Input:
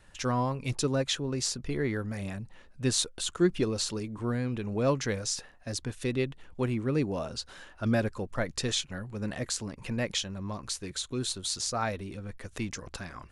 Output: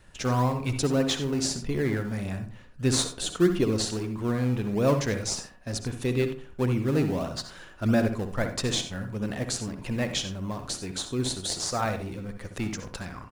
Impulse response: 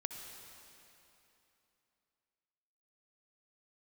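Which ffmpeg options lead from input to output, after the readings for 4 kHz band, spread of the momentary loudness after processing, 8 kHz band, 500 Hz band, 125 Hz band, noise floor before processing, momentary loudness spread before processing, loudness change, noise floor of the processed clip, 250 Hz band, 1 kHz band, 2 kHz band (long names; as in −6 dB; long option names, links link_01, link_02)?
+1.5 dB, 10 LU, +1.5 dB, +3.5 dB, +4.5 dB, −55 dBFS, 10 LU, +3.5 dB, −48 dBFS, +4.5 dB, +3.0 dB, +2.5 dB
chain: -filter_complex "[0:a]asplit=2[link_01][link_02];[link_02]acrusher=samples=28:mix=1:aa=0.000001:lfo=1:lforange=28:lforate=1.6,volume=-11dB[link_03];[link_01][link_03]amix=inputs=2:normalize=0,asplit=2[link_04][link_05];[link_05]adelay=64,lowpass=frequency=1400:poles=1,volume=-7.5dB,asplit=2[link_06][link_07];[link_07]adelay=64,lowpass=frequency=1400:poles=1,volume=0.41,asplit=2[link_08][link_09];[link_09]adelay=64,lowpass=frequency=1400:poles=1,volume=0.41,asplit=2[link_10][link_11];[link_11]adelay=64,lowpass=frequency=1400:poles=1,volume=0.41,asplit=2[link_12][link_13];[link_13]adelay=64,lowpass=frequency=1400:poles=1,volume=0.41[link_14];[link_04][link_06][link_08][link_10][link_12][link_14]amix=inputs=6:normalize=0[link_15];[1:a]atrim=start_sample=2205,atrim=end_sample=4410[link_16];[link_15][link_16]afir=irnorm=-1:irlink=0,volume=3.5dB"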